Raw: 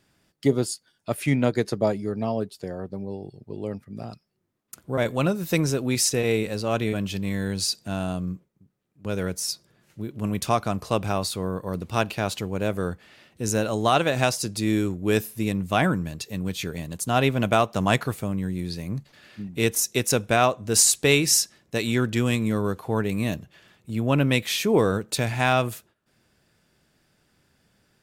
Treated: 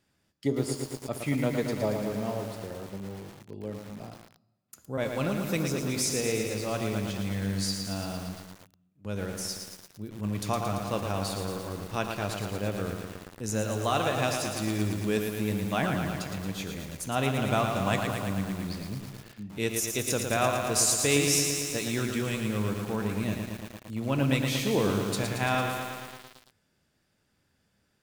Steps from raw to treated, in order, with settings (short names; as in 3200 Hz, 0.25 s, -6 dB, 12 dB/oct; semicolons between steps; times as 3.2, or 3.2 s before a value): on a send at -10 dB: reverb RT60 1.0 s, pre-delay 3 ms; on the sum: lo-fi delay 0.113 s, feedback 80%, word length 6-bit, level -5 dB; gain -7.5 dB